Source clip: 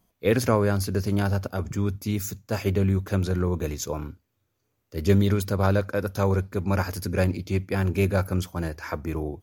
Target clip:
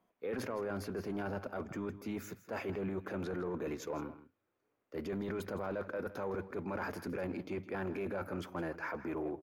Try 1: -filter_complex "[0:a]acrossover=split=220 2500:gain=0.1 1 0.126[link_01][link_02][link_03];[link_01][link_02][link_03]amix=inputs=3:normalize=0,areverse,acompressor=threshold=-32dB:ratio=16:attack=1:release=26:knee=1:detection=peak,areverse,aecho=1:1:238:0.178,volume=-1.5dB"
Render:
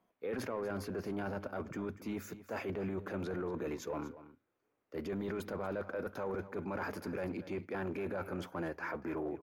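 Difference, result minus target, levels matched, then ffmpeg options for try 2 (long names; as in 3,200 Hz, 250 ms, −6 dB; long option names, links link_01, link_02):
echo 76 ms late
-filter_complex "[0:a]acrossover=split=220 2500:gain=0.1 1 0.126[link_01][link_02][link_03];[link_01][link_02][link_03]amix=inputs=3:normalize=0,areverse,acompressor=threshold=-32dB:ratio=16:attack=1:release=26:knee=1:detection=peak,areverse,aecho=1:1:162:0.178,volume=-1.5dB"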